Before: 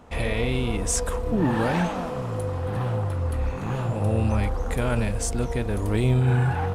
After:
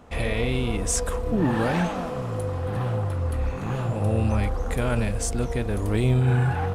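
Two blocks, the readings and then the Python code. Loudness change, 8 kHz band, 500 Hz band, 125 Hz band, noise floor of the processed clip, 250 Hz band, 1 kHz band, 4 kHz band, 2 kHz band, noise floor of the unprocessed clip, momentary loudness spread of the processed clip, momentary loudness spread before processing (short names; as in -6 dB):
0.0 dB, 0.0 dB, 0.0 dB, 0.0 dB, -31 dBFS, 0.0 dB, -0.5 dB, 0.0 dB, 0.0 dB, -31 dBFS, 7 LU, 7 LU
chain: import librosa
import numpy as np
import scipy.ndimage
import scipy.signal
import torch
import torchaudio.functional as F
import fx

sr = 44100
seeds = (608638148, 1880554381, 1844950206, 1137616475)

y = fx.notch(x, sr, hz=920.0, q=18.0)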